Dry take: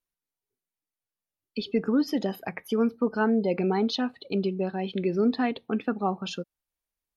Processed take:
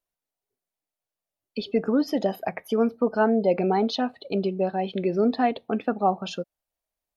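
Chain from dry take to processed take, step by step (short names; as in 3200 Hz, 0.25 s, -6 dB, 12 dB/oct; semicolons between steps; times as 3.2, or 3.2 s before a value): bell 650 Hz +10.5 dB 0.7 oct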